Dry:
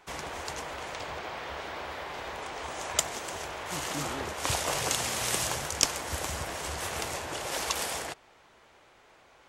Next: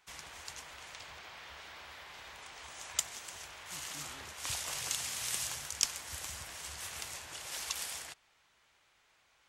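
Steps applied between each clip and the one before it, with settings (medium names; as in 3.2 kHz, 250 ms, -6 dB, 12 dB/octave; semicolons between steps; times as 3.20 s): amplifier tone stack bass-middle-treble 5-5-5; trim +1 dB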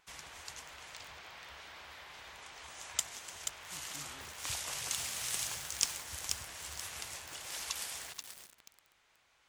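vibrato 5.7 Hz 23 cents; bit-crushed delay 482 ms, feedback 35%, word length 7-bit, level -4.5 dB; trim -1 dB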